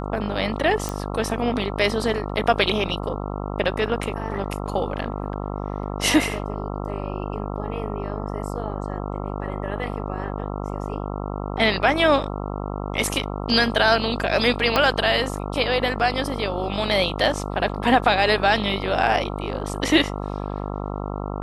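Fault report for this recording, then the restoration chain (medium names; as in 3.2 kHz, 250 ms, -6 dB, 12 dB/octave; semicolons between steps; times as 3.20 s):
buzz 50 Hz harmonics 27 -29 dBFS
0.89 s: pop -12 dBFS
14.76 s: pop -5 dBFS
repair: de-click; de-hum 50 Hz, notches 27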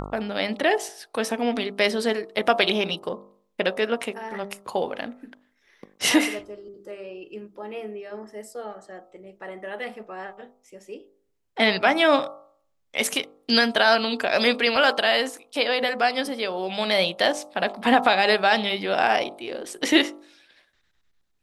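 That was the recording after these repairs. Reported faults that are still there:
14.76 s: pop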